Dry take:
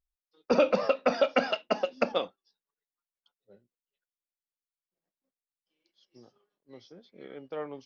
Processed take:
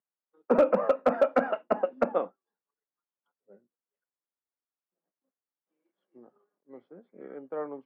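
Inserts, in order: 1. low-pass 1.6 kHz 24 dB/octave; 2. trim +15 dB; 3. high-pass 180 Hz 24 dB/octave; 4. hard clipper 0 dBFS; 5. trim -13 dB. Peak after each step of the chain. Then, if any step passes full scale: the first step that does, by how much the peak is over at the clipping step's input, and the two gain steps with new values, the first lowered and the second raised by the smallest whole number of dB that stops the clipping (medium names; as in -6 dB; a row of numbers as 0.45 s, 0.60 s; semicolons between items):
-12.5 dBFS, +2.5 dBFS, +4.0 dBFS, 0.0 dBFS, -13.0 dBFS; step 2, 4.0 dB; step 2 +11 dB, step 5 -9 dB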